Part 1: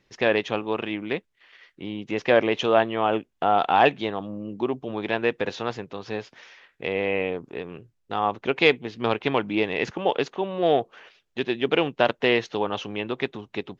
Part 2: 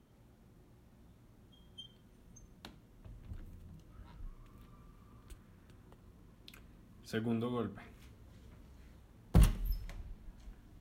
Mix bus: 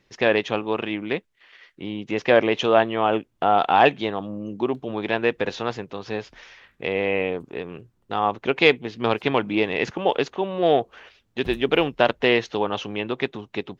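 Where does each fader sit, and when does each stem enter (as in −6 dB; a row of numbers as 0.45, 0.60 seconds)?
+2.0, −12.5 decibels; 0.00, 2.10 seconds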